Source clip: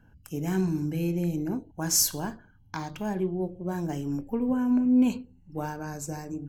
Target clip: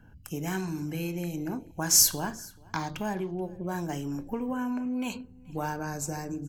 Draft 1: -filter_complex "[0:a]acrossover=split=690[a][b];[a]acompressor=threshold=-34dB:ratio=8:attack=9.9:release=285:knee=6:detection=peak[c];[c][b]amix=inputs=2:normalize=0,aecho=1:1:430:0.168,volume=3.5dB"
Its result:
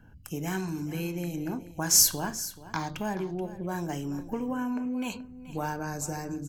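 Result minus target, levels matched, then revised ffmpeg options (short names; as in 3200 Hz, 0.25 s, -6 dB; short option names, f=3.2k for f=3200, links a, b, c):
echo-to-direct +9.5 dB
-filter_complex "[0:a]acrossover=split=690[a][b];[a]acompressor=threshold=-34dB:ratio=8:attack=9.9:release=285:knee=6:detection=peak[c];[c][b]amix=inputs=2:normalize=0,aecho=1:1:430:0.0562,volume=3.5dB"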